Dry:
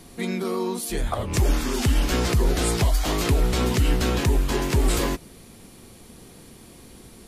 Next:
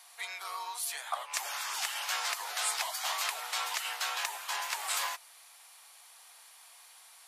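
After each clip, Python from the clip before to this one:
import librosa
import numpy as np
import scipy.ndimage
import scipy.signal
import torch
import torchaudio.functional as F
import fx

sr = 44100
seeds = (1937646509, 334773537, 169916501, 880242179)

y = scipy.signal.sosfilt(scipy.signal.butter(6, 770.0, 'highpass', fs=sr, output='sos'), x)
y = y * librosa.db_to_amplitude(-3.5)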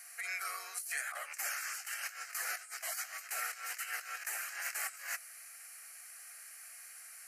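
y = fx.band_shelf(x, sr, hz=650.0, db=-9.0, octaves=1.7)
y = fx.over_compress(y, sr, threshold_db=-40.0, ratio=-0.5)
y = fx.fixed_phaser(y, sr, hz=960.0, stages=6)
y = y * librosa.db_to_amplitude(3.0)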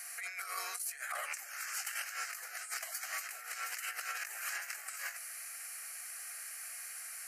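y = fx.over_compress(x, sr, threshold_db=-43.0, ratio=-0.5)
y = y * librosa.db_to_amplitude(3.0)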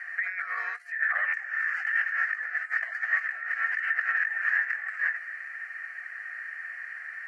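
y = fx.lowpass_res(x, sr, hz=1800.0, q=15.0)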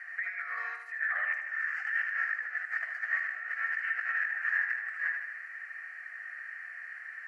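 y = fx.echo_feedback(x, sr, ms=77, feedback_pct=53, wet_db=-7)
y = y * librosa.db_to_amplitude(-5.5)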